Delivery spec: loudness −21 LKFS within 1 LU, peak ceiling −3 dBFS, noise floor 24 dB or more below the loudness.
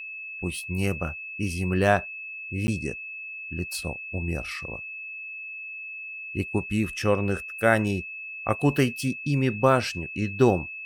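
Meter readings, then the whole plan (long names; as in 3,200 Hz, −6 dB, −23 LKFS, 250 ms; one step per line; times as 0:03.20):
number of dropouts 1; longest dropout 10 ms; interfering tone 2,600 Hz; level of the tone −35 dBFS; integrated loudness −27.0 LKFS; sample peak −6.0 dBFS; target loudness −21.0 LKFS
→ repair the gap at 0:02.67, 10 ms
notch filter 2,600 Hz, Q 30
level +6 dB
brickwall limiter −3 dBFS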